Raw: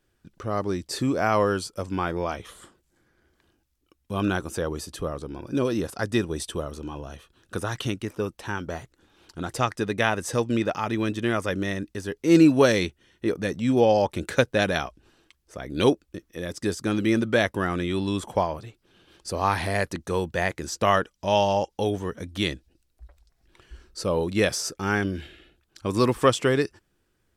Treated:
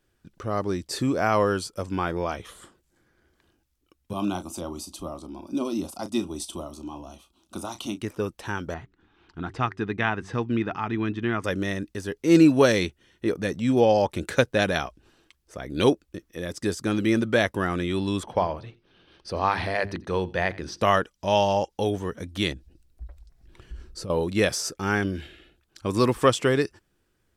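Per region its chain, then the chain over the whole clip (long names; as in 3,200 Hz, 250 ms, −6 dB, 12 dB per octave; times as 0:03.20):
0:04.13–0:08.01: high-pass filter 49 Hz + phaser with its sweep stopped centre 460 Hz, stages 6 + double-tracking delay 34 ms −12 dB
0:08.74–0:11.44: low-pass filter 2,600 Hz + parametric band 550 Hz −13.5 dB 0.39 octaves + hum removal 95.32 Hz, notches 4
0:18.23–0:20.81: Savitzky-Golay smoothing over 15 samples + mains-hum notches 50/100/150/200/250/300/350/400 Hz + single-tap delay 86 ms −22 dB
0:22.52–0:24.10: low-shelf EQ 290 Hz +11 dB + downward compressor, threshold −33 dBFS
whole clip: no processing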